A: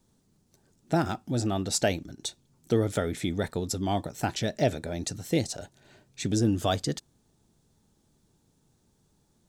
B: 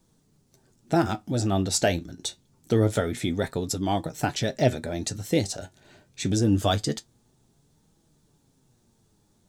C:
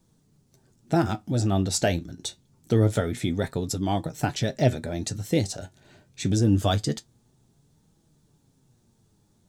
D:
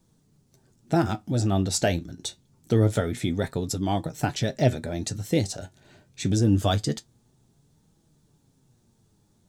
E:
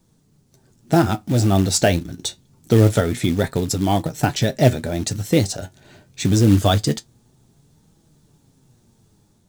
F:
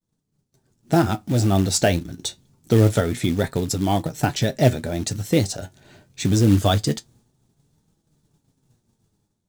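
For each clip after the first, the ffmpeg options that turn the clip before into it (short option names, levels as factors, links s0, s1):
-af "flanger=delay=6:depth=5.8:regen=60:speed=0.25:shape=triangular,volume=2.24"
-af "equalizer=f=120:w=0.77:g=4.5,volume=0.841"
-af anull
-af "acrusher=bits=5:mode=log:mix=0:aa=0.000001,dynaudnorm=f=460:g=3:m=1.41,volume=1.58"
-af "agate=range=0.0224:threshold=0.00355:ratio=3:detection=peak,volume=0.794"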